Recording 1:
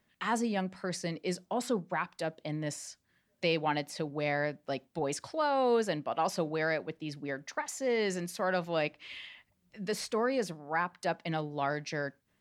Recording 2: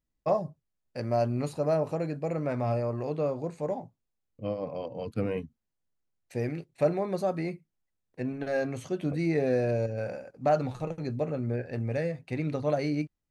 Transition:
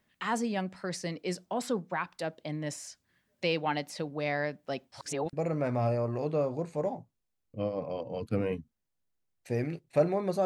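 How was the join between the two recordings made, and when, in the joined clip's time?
recording 1
0:04.92–0:05.33: reverse
0:05.33: continue with recording 2 from 0:02.18

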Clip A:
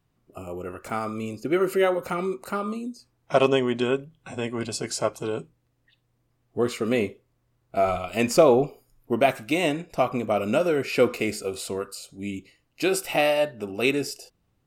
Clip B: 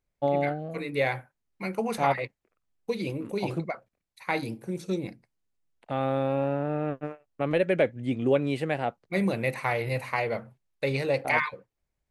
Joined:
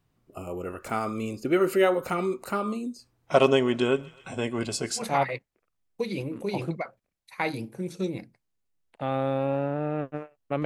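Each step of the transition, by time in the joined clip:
clip A
0:03.18–0:05.05: feedback echo with a high-pass in the loop 128 ms, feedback 77%, high-pass 620 Hz, level −22 dB
0:05.00: continue with clip B from 0:01.89, crossfade 0.10 s

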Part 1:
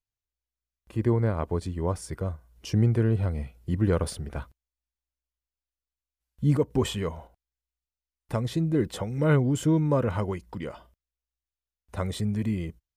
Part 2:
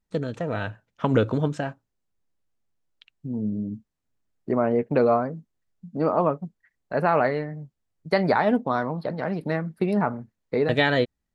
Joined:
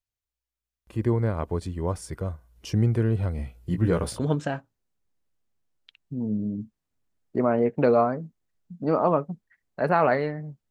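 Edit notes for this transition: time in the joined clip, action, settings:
part 1
0:03.37–0:04.27: double-tracking delay 17 ms −5 dB
0:04.19: continue with part 2 from 0:01.32, crossfade 0.16 s

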